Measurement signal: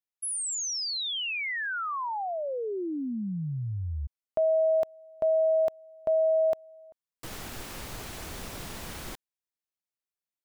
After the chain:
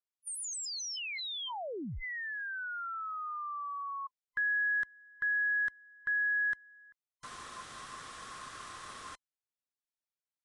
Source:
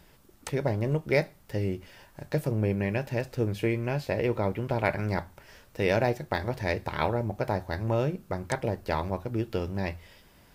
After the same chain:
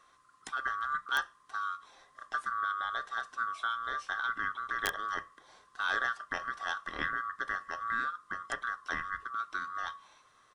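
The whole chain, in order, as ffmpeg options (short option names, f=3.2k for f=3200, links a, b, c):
-af "afftfilt=real='real(if(lt(b,960),b+48*(1-2*mod(floor(b/48),2)),b),0)':imag='imag(if(lt(b,960),b+48*(1-2*mod(floor(b/48),2)),b),0)':win_size=2048:overlap=0.75,aresample=22050,aresample=44100,aeval=exprs='(mod(3.76*val(0)+1,2)-1)/3.76':c=same,volume=-7dB"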